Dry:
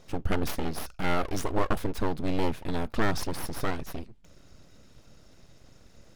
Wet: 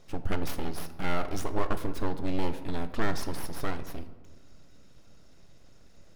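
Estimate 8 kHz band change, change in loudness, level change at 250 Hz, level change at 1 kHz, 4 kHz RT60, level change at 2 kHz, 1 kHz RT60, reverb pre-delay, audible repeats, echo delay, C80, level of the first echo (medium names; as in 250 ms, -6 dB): -3.5 dB, -3.0 dB, -2.5 dB, -3.0 dB, 0.70 s, -3.0 dB, 1.2 s, 3 ms, no echo, no echo, 14.0 dB, no echo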